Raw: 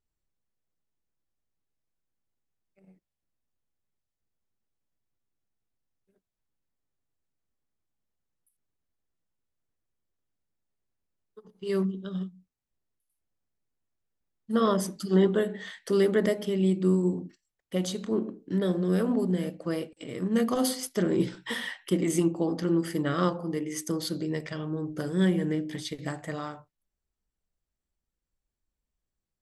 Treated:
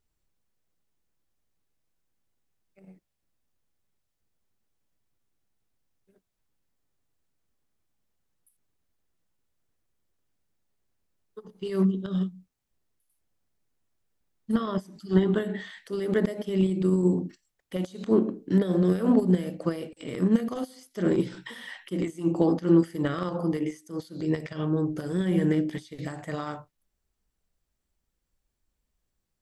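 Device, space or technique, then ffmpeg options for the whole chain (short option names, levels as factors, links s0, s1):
de-esser from a sidechain: -filter_complex "[0:a]asplit=2[s0][s1];[s1]highpass=f=4200:w=0.5412,highpass=f=4200:w=1.3066,apad=whole_len=1297227[s2];[s0][s2]sidechaincompress=threshold=0.00158:ratio=10:attack=0.88:release=75,asettb=1/sr,asplit=3[s3][s4][s5];[s3]atrim=end=14.554[s6];[s4]atrim=start=14.55:end=15.79,asetpts=PTS-STARTPTS,afade=t=in:d=0.004:c=qsin,afade=t=out:st=1.236:d=0.004:c=qsin,equalizer=f=500:t=o:w=0.33:g=-9,equalizer=f=6300:t=o:w=0.33:g=-4,equalizer=f=10000:t=o:w=0.33:g=-8[s7];[s5]atrim=start=15.786[s8];[s6][s7]acrossfade=d=0.004:c1=hsin:c2=qsin[s9];[s9][s8]acrossfade=d=0.004:c1=qsin:c2=hsin,volume=2.11"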